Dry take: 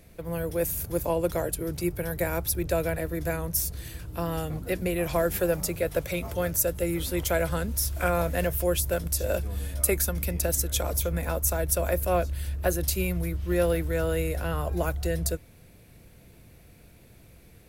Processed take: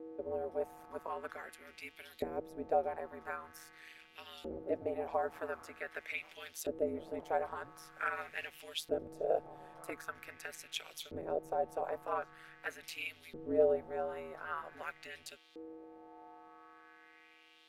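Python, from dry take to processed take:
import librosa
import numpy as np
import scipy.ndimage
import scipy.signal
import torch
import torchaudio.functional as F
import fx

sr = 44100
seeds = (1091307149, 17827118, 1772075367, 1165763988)

y = fx.dmg_buzz(x, sr, base_hz=400.0, harmonics=33, level_db=-45.0, tilt_db=-8, odd_only=False)
y = fx.filter_lfo_bandpass(y, sr, shape='saw_up', hz=0.45, low_hz=390.0, high_hz=3800.0, q=2.9)
y = y * np.sin(2.0 * np.pi * 79.0 * np.arange(len(y)) / sr)
y = F.gain(torch.from_numpy(y), 1.0).numpy()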